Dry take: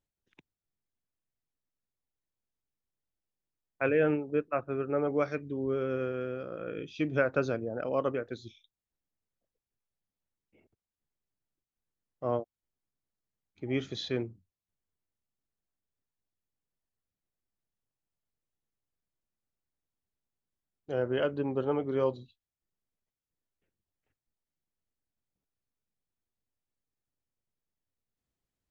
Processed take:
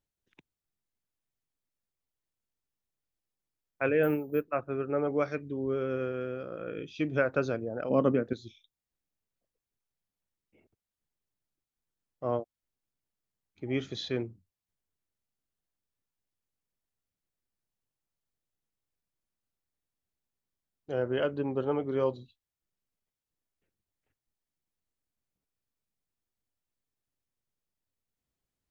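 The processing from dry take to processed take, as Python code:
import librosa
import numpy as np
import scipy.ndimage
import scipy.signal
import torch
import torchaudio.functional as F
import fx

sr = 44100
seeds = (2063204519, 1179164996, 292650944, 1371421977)

y = fx.resample_bad(x, sr, factor=3, down='filtered', up='hold', at=(4.03, 4.48))
y = fx.peak_eq(y, sr, hz=200.0, db=14.5, octaves=1.5, at=(7.9, 8.33))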